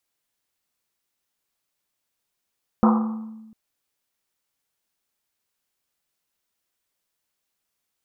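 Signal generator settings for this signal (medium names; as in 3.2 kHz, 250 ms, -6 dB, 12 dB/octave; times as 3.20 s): Risset drum length 0.70 s, pitch 220 Hz, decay 1.30 s, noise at 1 kHz, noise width 500 Hz, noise 30%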